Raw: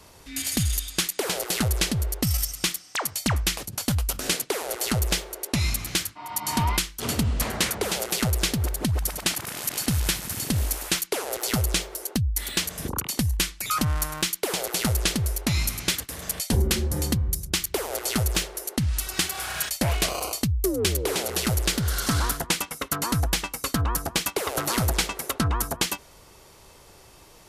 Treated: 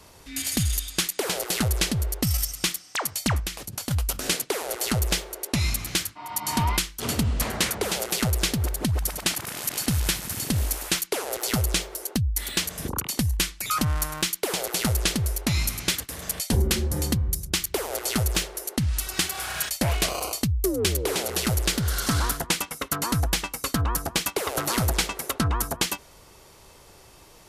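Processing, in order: 3.39–3.91 s: compression 6:1, threshold -28 dBFS, peak gain reduction 9 dB

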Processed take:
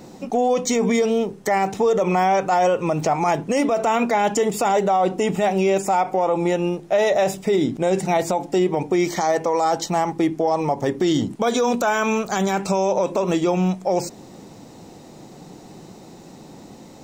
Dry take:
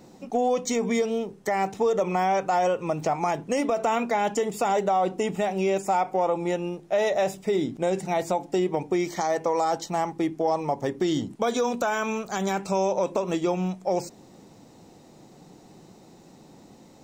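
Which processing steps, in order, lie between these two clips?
peak limiter -19.5 dBFS, peak gain reduction 7.5 dB; trim +8.5 dB

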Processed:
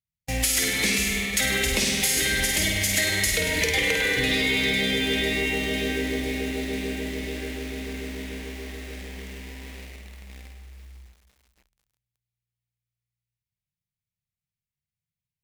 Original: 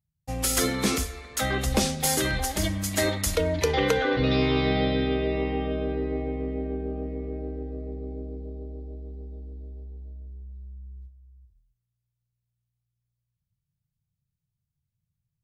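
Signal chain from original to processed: gate -43 dBFS, range -14 dB; in parallel at -10 dB: word length cut 6-bit, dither none; on the sum: resonant high shelf 1.6 kHz +7.5 dB, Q 3; on a send: flutter echo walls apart 8.6 m, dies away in 0.66 s; on the sum: spring tank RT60 1.6 s, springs 55 ms, chirp 75 ms, DRR 5.5 dB; compression 6:1, threshold -20 dBFS, peak gain reduction 10 dB; Chebyshev shaper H 5 -20 dB, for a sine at -5 dBFS; bit-crushed delay 500 ms, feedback 80%, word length 7-bit, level -13 dB; trim -3.5 dB

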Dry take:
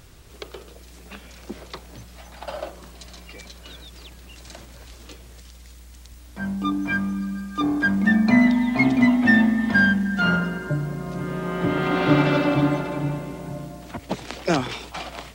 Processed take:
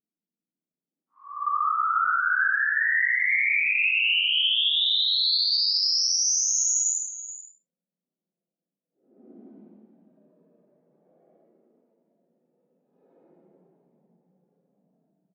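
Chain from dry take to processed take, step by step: median filter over 41 samples; gate with hold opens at -34 dBFS; level-controlled noise filter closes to 320 Hz, open at -15 dBFS; flange 0.76 Hz, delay 7.1 ms, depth 2.6 ms, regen -52%; painted sound rise, 1.01–1.35 s, 1.1–7.2 kHz -18 dBFS; rippled Chebyshev high-pass 170 Hz, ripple 6 dB; tilt shelf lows -9.5 dB, about 1.3 kHz; Paulstretch 16×, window 0.05 s, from 0.92 s; peak limiter -16 dBFS, peak gain reduction 12.5 dB; delay 428 ms -13.5 dB

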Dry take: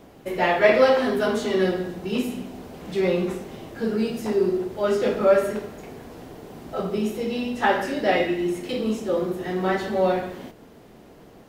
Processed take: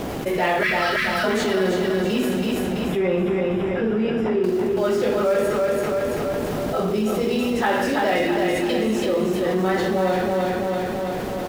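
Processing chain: 0.63–1.24 s: elliptic band-stop 180–1300 Hz; in parallel at -10.5 dB: companded quantiser 4-bit; 2.57–4.44 s: on the sum: Savitzky-Golay filter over 25 samples; on a send: feedback delay 331 ms, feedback 45%, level -5 dB; on the sum: level flattener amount 70%; trim -7.5 dB

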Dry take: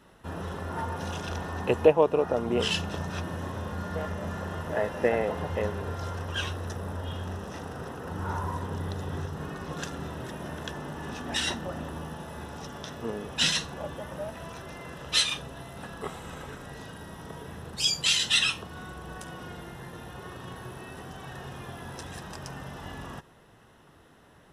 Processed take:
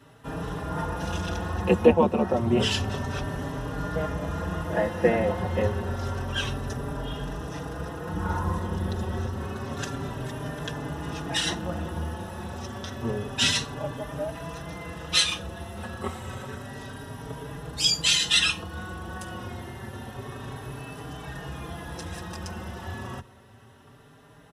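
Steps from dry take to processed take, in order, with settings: octave divider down 1 oct, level +2 dB; high-pass 67 Hz; endless flanger 4.6 ms +0.29 Hz; trim +5.5 dB

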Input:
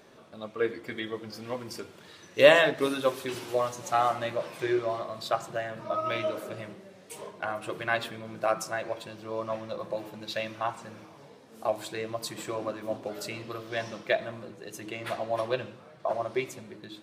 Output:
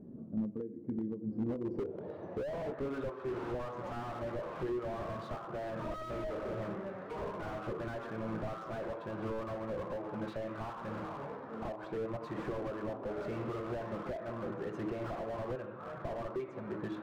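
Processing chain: dynamic bell 440 Hz, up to +6 dB, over -42 dBFS, Q 1.6; compression 6:1, threshold -40 dBFS, peak gain reduction 28.5 dB; low-pass sweep 230 Hz -> 1.3 kHz, 1.25–2.86 s; slew-rate limiter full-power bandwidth 3.6 Hz; trim +7.5 dB

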